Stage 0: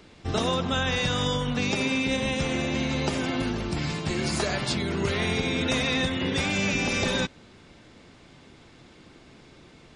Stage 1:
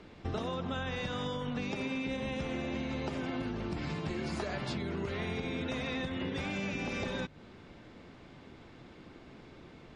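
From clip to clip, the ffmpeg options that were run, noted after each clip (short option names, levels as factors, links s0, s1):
-af "aemphasis=mode=reproduction:type=75fm,bandreject=f=50:t=h:w=6,bandreject=f=100:t=h:w=6,bandreject=f=150:t=h:w=6,acompressor=threshold=0.0251:ratio=6,volume=0.891"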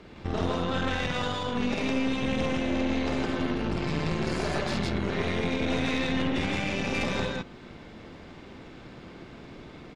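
-filter_complex "[0:a]asplit=2[s0][s1];[s1]aecho=0:1:49.56|160.3:0.794|1[s2];[s0][s2]amix=inputs=2:normalize=0,aeval=exprs='(tanh(25.1*val(0)+0.75)-tanh(0.75))/25.1':c=same,volume=2.37"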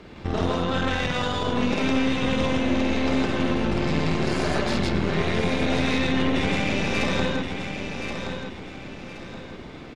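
-af "aecho=1:1:1073|2146|3219|4292:0.447|0.143|0.0457|0.0146,volume=1.58"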